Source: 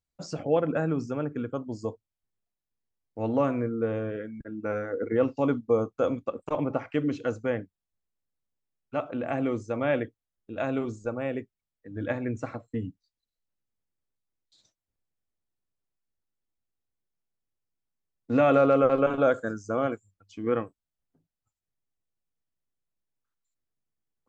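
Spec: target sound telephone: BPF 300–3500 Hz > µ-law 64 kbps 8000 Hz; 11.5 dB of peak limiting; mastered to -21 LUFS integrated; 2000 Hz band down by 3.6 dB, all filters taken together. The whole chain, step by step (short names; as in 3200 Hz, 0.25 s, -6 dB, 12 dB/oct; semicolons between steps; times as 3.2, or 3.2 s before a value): bell 2000 Hz -5 dB; limiter -21.5 dBFS; BPF 300–3500 Hz; gain +14 dB; µ-law 64 kbps 8000 Hz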